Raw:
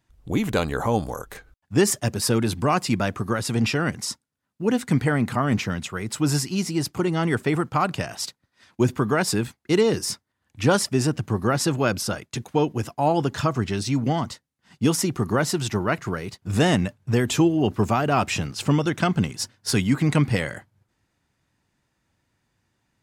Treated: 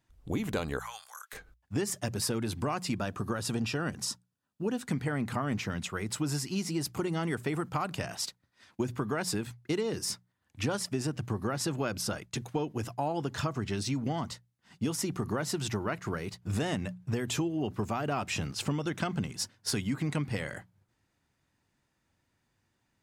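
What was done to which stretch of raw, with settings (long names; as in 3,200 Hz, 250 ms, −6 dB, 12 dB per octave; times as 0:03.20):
0:00.79–0:01.33: high-pass filter 1,300 Hz 24 dB per octave
0:02.95–0:04.88: notch filter 2,100 Hz, Q 5.6
0:06.81–0:07.99: high-shelf EQ 8,700 Hz +6.5 dB
whole clip: mains-hum notches 60/120/180 Hz; downward compressor, threshold −24 dBFS; level −4 dB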